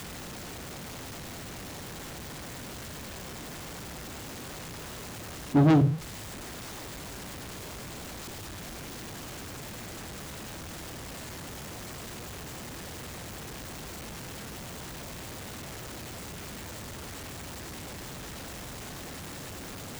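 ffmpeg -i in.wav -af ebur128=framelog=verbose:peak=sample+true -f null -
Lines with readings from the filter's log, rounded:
Integrated loudness:
  I:         -35.5 LUFS
  Threshold: -45.5 LUFS
Loudness range:
  LRA:        11.3 LU
  Threshold: -55.1 LUFS
  LRA low:   -40.1 LUFS
  LRA high:  -28.9 LUFS
Sample peak:
  Peak:      -11.7 dBFS
True peak:
  Peak:      -11.7 dBFS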